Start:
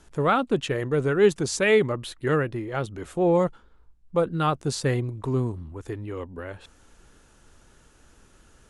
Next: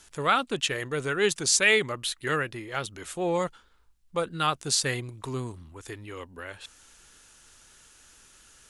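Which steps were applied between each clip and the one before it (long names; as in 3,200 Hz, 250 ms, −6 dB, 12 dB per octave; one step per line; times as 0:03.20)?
tilt shelving filter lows −9 dB, about 1,300 Hz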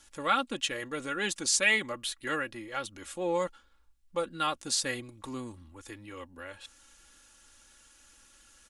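comb filter 3.6 ms, depth 66%
level −5.5 dB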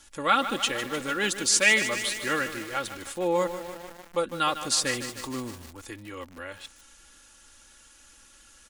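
feedback echo at a low word length 151 ms, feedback 80%, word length 7 bits, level −10.5 dB
level +4.5 dB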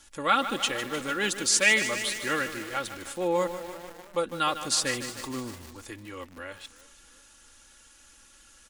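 feedback echo with a swinging delay time 337 ms, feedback 43%, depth 87 cents, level −20.5 dB
level −1 dB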